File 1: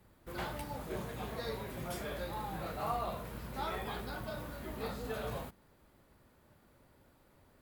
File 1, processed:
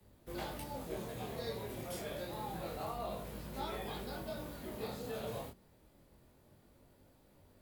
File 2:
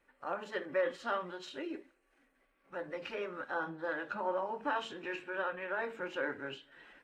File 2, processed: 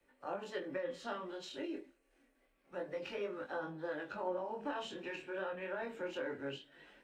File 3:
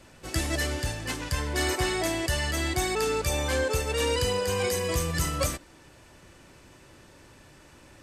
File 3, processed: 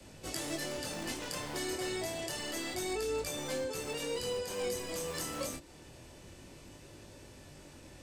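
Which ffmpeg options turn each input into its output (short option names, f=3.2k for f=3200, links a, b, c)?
-filter_complex "[0:a]acrossover=split=180|850|4000[a][b][c][d];[a]aeval=exprs='(mod(63.1*val(0)+1,2)-1)/63.1':c=same[e];[c]equalizer=f=1.1k:w=0.76:g=-10[f];[e][b][f][d]amix=inputs=4:normalize=0,acrossover=split=110|300[g][h][i];[g]acompressor=threshold=-53dB:ratio=4[j];[h]acompressor=threshold=-49dB:ratio=4[k];[i]acompressor=threshold=-38dB:ratio=4[l];[j][k][l]amix=inputs=3:normalize=0,flanger=delay=19.5:depth=7.1:speed=0.28,volume=4dB"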